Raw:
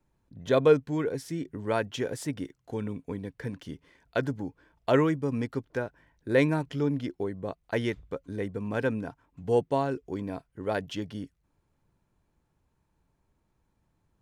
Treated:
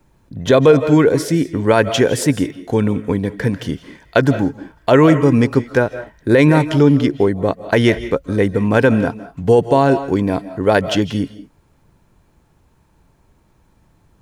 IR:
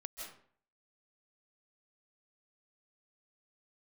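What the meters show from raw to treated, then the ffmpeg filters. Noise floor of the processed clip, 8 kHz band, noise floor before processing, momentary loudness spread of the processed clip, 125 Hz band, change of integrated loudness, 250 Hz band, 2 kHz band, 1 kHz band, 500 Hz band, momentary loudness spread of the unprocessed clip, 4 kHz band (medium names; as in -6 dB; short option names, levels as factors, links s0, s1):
-57 dBFS, no reading, -75 dBFS, 11 LU, +16.0 dB, +14.5 dB, +16.0 dB, +14.5 dB, +14.5 dB, +13.5 dB, 15 LU, +16.0 dB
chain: -filter_complex "[0:a]asplit=2[s0][s1];[1:a]atrim=start_sample=2205,afade=t=out:st=0.28:d=0.01,atrim=end_sample=12789[s2];[s1][s2]afir=irnorm=-1:irlink=0,volume=0.531[s3];[s0][s3]amix=inputs=2:normalize=0,alimiter=level_in=6.31:limit=0.891:release=50:level=0:latency=1,volume=0.891"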